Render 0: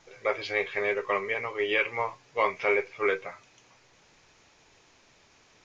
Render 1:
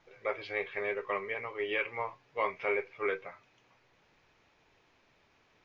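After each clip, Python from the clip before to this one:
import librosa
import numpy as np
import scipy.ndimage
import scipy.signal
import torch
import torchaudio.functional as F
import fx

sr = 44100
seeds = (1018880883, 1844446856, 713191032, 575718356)

y = scipy.signal.sosfilt(scipy.signal.butter(2, 3400.0, 'lowpass', fs=sr, output='sos'), x)
y = y * 10.0 ** (-6.0 / 20.0)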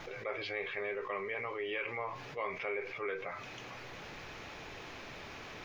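y = fx.notch(x, sr, hz=940.0, q=23.0)
y = fx.env_flatten(y, sr, amount_pct=70)
y = y * 10.0 ** (-7.5 / 20.0)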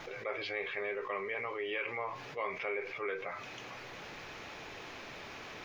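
y = fx.low_shelf(x, sr, hz=130.0, db=-7.0)
y = y * 10.0 ** (1.0 / 20.0)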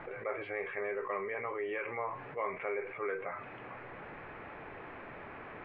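y = scipy.signal.sosfilt(scipy.signal.butter(4, 2000.0, 'lowpass', fs=sr, output='sos'), x)
y = y * 10.0 ** (1.5 / 20.0)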